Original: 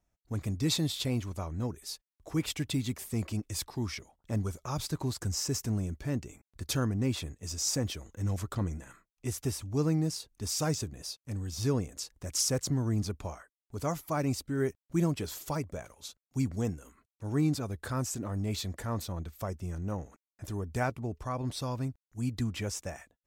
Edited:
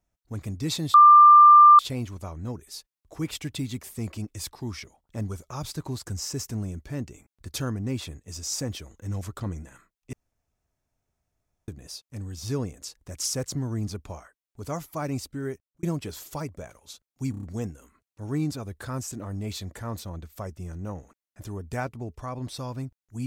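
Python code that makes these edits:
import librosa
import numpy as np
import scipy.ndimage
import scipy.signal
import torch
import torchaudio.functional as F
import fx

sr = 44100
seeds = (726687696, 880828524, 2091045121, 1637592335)

y = fx.edit(x, sr, fx.insert_tone(at_s=0.94, length_s=0.85, hz=1190.0, db=-8.5),
    fx.room_tone_fill(start_s=9.28, length_s=1.55),
    fx.fade_out_span(start_s=14.5, length_s=0.48),
    fx.stutter(start_s=16.46, slice_s=0.03, count=5), tone=tone)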